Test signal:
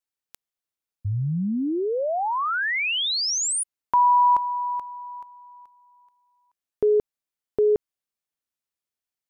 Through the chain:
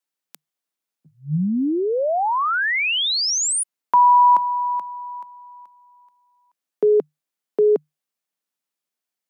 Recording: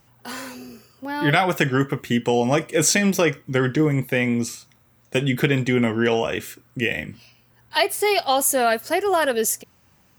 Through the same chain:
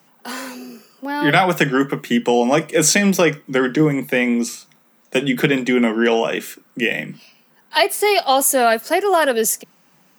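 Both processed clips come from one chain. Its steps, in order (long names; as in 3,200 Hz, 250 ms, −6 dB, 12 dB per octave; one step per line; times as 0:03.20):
Chebyshev high-pass filter 150 Hz, order 8
level +4.5 dB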